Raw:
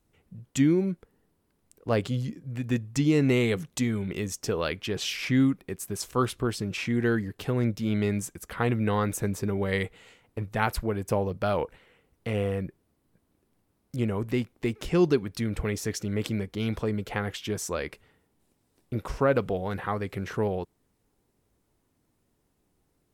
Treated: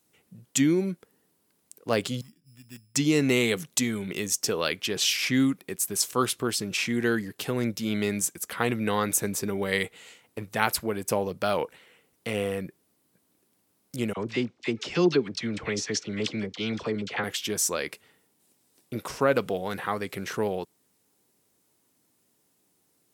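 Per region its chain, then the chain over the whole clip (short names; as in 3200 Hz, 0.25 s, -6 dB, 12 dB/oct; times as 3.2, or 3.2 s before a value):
2.21–2.95 passive tone stack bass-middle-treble 6-0-2 + sample-rate reducer 5200 Hz
14.13–17.24 LPF 6000 Hz 24 dB/oct + dispersion lows, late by 41 ms, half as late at 1100 Hz
whole clip: HPF 160 Hz 12 dB/oct; high shelf 3000 Hz +11.5 dB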